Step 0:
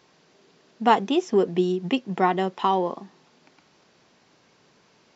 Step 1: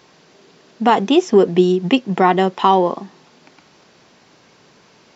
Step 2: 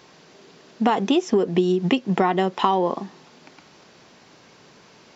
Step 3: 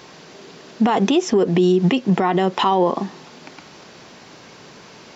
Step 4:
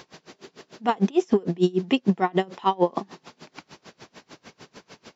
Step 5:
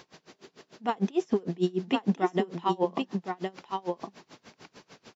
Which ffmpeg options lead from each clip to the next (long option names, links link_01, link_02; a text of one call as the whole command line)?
ffmpeg -i in.wav -af "alimiter=level_in=10dB:limit=-1dB:release=50:level=0:latency=1,volume=-1dB" out.wav
ffmpeg -i in.wav -af "acompressor=threshold=-15dB:ratio=12" out.wav
ffmpeg -i in.wav -af "alimiter=limit=-16.5dB:level=0:latency=1:release=39,volume=8dB" out.wav
ffmpeg -i in.wav -af "aeval=exprs='val(0)*pow(10,-29*(0.5-0.5*cos(2*PI*6.7*n/s))/20)':channel_layout=same" out.wav
ffmpeg -i in.wav -af "aecho=1:1:1064:0.562,volume=-6dB" out.wav